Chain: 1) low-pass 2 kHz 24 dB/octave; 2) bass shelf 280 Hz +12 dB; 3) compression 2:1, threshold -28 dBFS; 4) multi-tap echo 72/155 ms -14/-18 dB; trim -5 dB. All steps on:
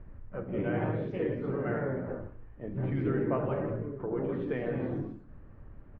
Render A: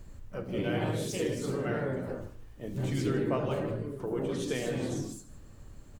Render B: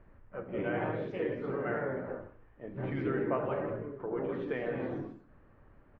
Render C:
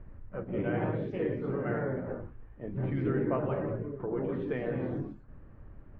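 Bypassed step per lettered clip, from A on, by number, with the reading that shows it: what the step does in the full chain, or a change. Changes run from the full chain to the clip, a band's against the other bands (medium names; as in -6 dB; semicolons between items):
1, 2 kHz band +2.0 dB; 2, 125 Hz band -7.0 dB; 4, echo-to-direct -12.5 dB to none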